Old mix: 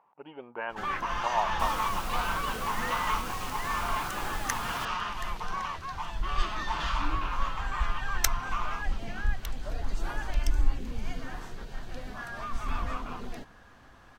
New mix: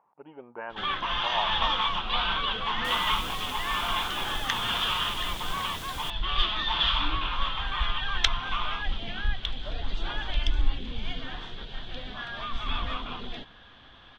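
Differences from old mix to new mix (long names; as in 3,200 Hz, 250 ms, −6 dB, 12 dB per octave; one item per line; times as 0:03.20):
speech: add high-frequency loss of the air 500 metres
first sound: add low-pass with resonance 3,400 Hz, resonance Q 8.8
second sound: entry +1.25 s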